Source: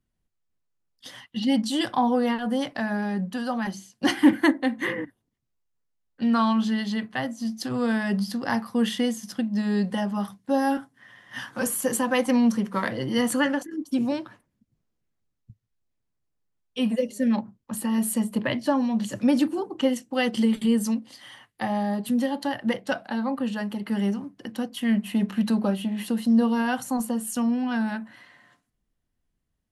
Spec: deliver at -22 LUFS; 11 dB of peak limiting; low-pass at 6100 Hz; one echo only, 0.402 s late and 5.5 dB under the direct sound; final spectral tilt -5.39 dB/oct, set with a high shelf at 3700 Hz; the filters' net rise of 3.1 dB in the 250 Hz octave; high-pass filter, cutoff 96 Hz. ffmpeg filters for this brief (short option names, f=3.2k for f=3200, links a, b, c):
-af "highpass=96,lowpass=6.1k,equalizer=f=250:t=o:g=3.5,highshelf=f=3.7k:g=5,alimiter=limit=-14.5dB:level=0:latency=1,aecho=1:1:402:0.531,volume=2dB"